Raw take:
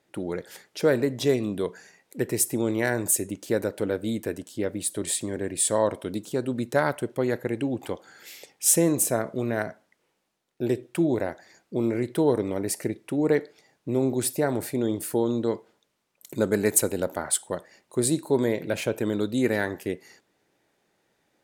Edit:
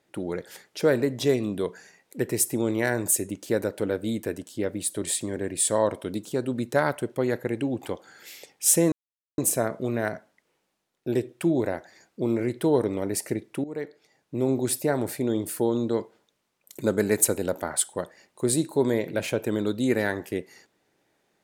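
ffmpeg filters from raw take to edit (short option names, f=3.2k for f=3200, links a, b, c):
-filter_complex "[0:a]asplit=3[a][b][c];[a]atrim=end=8.92,asetpts=PTS-STARTPTS,afade=t=out:st=8.916:d=0.004:c=hsin,apad=pad_dur=0.46[d];[b]atrim=start=8.92:end=13.18,asetpts=PTS-STARTPTS,afade=t=in:d=0.004:c=hsin,afade=t=out:st=4.256:d=0.004:c=hsin:silence=0.141254[e];[c]atrim=start=13.18,asetpts=PTS-STARTPTS,afade=t=in:d=0.86:silence=0.141254[f];[d][e][f]concat=n=3:v=0:a=1"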